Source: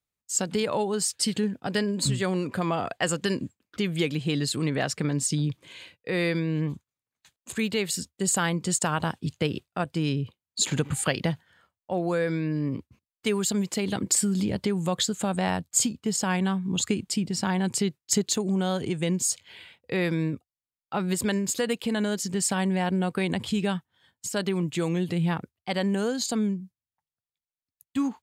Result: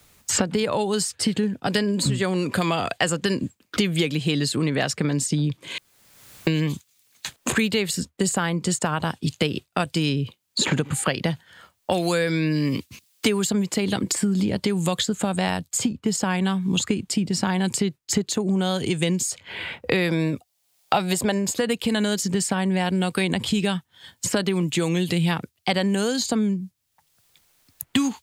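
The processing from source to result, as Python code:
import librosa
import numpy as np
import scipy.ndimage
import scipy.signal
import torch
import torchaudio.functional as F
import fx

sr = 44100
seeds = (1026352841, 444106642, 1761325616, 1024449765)

y = fx.peak_eq(x, sr, hz=710.0, db=12.0, octaves=0.77, at=(20.09, 21.55))
y = fx.edit(y, sr, fx.room_tone_fill(start_s=5.78, length_s=0.69), tone=tone)
y = fx.band_squash(y, sr, depth_pct=100)
y = F.gain(torch.from_numpy(y), 3.0).numpy()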